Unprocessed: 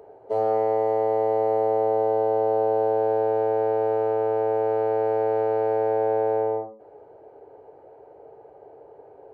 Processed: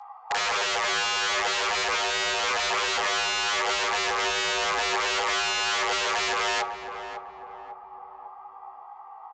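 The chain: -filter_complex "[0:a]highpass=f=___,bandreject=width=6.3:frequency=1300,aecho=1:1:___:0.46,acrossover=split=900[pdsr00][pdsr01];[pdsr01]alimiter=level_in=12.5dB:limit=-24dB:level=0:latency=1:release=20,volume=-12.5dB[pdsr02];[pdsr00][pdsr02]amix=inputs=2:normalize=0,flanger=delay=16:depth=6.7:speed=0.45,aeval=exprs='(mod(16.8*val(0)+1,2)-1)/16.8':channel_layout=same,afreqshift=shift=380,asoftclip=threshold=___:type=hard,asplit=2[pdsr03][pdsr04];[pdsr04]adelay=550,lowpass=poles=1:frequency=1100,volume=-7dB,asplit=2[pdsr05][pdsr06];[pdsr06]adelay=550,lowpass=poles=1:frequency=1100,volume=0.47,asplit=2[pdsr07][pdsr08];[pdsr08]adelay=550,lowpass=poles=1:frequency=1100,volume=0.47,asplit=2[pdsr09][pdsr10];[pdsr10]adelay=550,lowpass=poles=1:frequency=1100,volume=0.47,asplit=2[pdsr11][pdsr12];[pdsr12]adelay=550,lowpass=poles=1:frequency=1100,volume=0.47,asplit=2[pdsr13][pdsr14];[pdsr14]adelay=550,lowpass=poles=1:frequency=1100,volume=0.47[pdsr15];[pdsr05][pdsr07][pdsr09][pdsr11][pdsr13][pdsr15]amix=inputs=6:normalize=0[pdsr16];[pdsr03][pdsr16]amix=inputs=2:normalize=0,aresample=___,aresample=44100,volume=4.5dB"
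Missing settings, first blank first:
210, 2.5, -25.5dB, 16000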